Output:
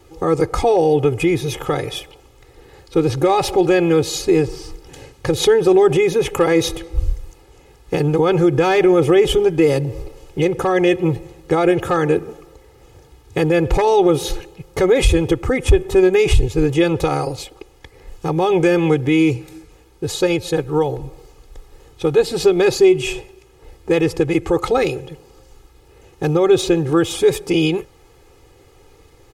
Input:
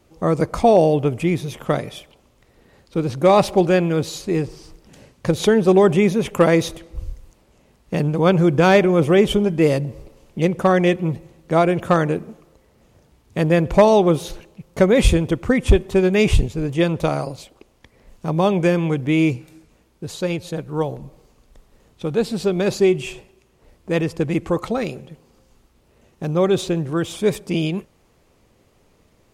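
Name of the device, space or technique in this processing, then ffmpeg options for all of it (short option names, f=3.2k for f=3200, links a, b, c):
stacked limiters: -filter_complex "[0:a]alimiter=limit=-10dB:level=0:latency=1:release=43,alimiter=limit=-15dB:level=0:latency=1:release=204,aecho=1:1:2.4:0.9,asettb=1/sr,asplit=3[a][b][c];[a]atrim=end=15.414[d];[b]atrim=start=15.41:end=16.25,asetpts=PTS-STARTPTS,afade=t=in:d=0.004:c=qsin,afade=t=out:st=0.836:d=0.004:c=qsin,equalizer=f=3.7k:t=o:w=1.4:g=-3.5[e];[c]atrim=start=16.246[f];[d][e]acrossfade=d=0.004:c1=hsin:c2=qsin[g];[g][f]acrossfade=d=0.004:c1=qsin:c2=hsin,volume=6dB"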